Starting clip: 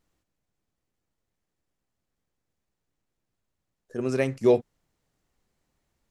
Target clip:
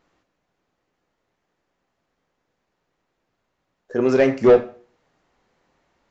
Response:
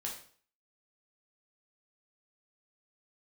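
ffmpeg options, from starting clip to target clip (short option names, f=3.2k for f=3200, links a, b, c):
-filter_complex "[0:a]asplit=2[a][b];[b]highpass=f=720:p=1,volume=19dB,asoftclip=type=tanh:threshold=-10dB[c];[a][c]amix=inputs=2:normalize=0,lowpass=f=1.2k:p=1,volume=-6dB,asplit=2[d][e];[1:a]atrim=start_sample=2205,asetrate=48510,aresample=44100[f];[e][f]afir=irnorm=-1:irlink=0,volume=-3.5dB[g];[d][g]amix=inputs=2:normalize=0,aresample=16000,aresample=44100,volume=2dB"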